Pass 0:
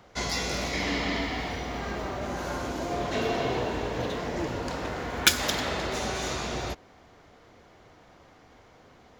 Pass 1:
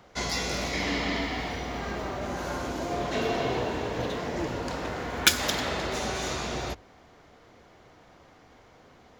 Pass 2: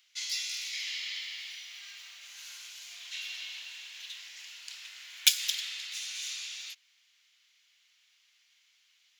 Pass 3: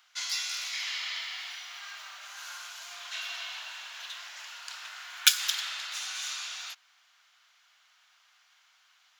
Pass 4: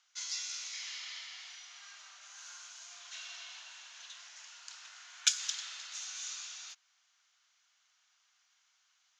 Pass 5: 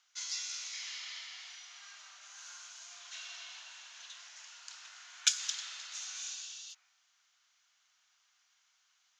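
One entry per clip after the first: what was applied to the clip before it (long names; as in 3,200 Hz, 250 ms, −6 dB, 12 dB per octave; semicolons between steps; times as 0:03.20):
mains-hum notches 50/100 Hz
Chebyshev high-pass filter 2,700 Hz, order 3
flat-topped bell 960 Hz +15.5 dB; level +1.5 dB
transistor ladder low-pass 7,300 Hz, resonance 60%; level −1 dB
healed spectral selection 0:06.25–0:06.95, 460–2,600 Hz both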